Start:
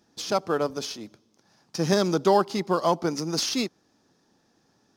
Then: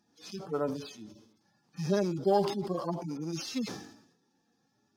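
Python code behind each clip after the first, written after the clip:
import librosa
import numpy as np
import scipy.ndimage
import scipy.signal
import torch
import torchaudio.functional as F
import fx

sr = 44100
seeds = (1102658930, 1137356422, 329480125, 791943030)

y = fx.hpss_only(x, sr, part='harmonic')
y = fx.sustainer(y, sr, db_per_s=74.0)
y = F.gain(torch.from_numpy(y), -5.5).numpy()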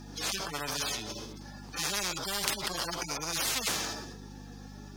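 y = fx.add_hum(x, sr, base_hz=50, snr_db=28)
y = fx.spectral_comp(y, sr, ratio=10.0)
y = F.gain(torch.from_numpy(y), 7.0).numpy()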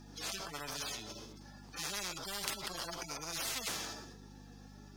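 y = fx.comb_fb(x, sr, f0_hz=670.0, decay_s=0.5, harmonics='all', damping=0.0, mix_pct=70)
y = F.gain(torch.from_numpy(y), 2.5).numpy()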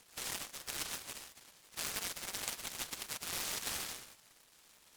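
y = fx.bandpass_q(x, sr, hz=5400.0, q=7.9)
y = fx.noise_mod_delay(y, sr, seeds[0], noise_hz=1700.0, depth_ms=0.077)
y = F.gain(torch.from_numpy(y), 9.5).numpy()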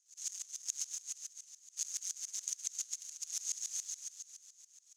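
y = fx.bandpass_q(x, sr, hz=6500.0, q=10.0)
y = fx.echo_feedback(y, sr, ms=311, feedback_pct=42, wet_db=-8.5)
y = fx.tremolo_decay(y, sr, direction='swelling', hz=7.1, depth_db=21)
y = F.gain(torch.from_numpy(y), 17.5).numpy()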